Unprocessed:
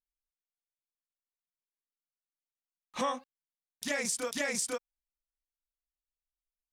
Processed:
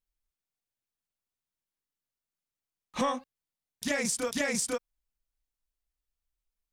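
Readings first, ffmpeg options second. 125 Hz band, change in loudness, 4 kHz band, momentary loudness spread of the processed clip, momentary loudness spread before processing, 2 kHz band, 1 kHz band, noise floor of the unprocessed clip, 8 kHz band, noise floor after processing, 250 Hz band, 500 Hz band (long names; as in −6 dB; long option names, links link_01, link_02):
+8.0 dB, +2.5 dB, +1.5 dB, 10 LU, 10 LU, +2.0 dB, +2.0 dB, below −85 dBFS, +1.5 dB, below −85 dBFS, +6.0 dB, +3.0 dB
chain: -filter_complex "[0:a]lowshelf=frequency=210:gain=10.5,asplit=2[link_01][link_02];[link_02]aeval=exprs='clip(val(0),-1,0.0299)':channel_layout=same,volume=-12dB[link_03];[link_01][link_03]amix=inputs=2:normalize=0"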